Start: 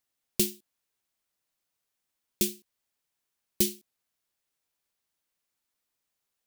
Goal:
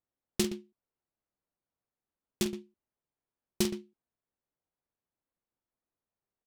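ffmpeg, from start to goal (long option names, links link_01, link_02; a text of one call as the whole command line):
ffmpeg -i in.wav -af "aecho=1:1:46.65|119.5:0.355|0.282,adynamicsmooth=sensitivity=7:basefreq=1100" out.wav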